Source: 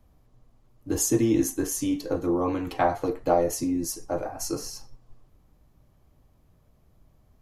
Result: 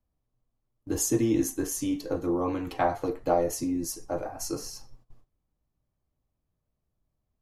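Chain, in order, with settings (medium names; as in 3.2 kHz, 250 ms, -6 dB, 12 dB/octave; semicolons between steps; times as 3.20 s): gate -48 dBFS, range -17 dB; trim -2.5 dB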